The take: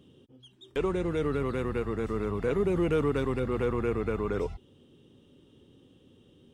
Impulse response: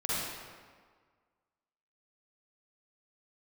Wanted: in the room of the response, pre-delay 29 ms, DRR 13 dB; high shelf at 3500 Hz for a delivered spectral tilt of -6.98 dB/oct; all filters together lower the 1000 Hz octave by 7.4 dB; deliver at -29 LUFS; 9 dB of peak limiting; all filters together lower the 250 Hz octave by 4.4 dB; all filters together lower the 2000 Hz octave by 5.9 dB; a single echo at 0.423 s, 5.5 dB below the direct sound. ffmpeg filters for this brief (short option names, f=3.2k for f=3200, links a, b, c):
-filter_complex "[0:a]equalizer=f=250:t=o:g=-6,equalizer=f=1k:t=o:g=-7.5,equalizer=f=2k:t=o:g=-7.5,highshelf=f=3.5k:g=8,alimiter=level_in=4dB:limit=-24dB:level=0:latency=1,volume=-4dB,aecho=1:1:423:0.531,asplit=2[a][b];[1:a]atrim=start_sample=2205,adelay=29[c];[b][c]afir=irnorm=-1:irlink=0,volume=-21dB[d];[a][d]amix=inputs=2:normalize=0,volume=7dB"